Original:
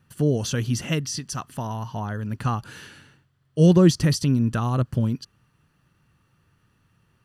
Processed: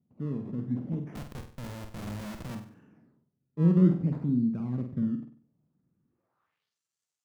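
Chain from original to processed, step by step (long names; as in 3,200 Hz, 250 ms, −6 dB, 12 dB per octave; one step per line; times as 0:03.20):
sample-and-hold swept by an LFO 20×, swing 100% 0.62 Hz
band-pass filter sweep 220 Hz → 7,100 Hz, 0:06.04–0:06.78
automatic gain control gain up to 4 dB
0:01.15–0:02.55: comparator with hysteresis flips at −33.5 dBFS
on a send: flutter between parallel walls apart 8.3 metres, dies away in 0.45 s
on the sum: level −6.5 dB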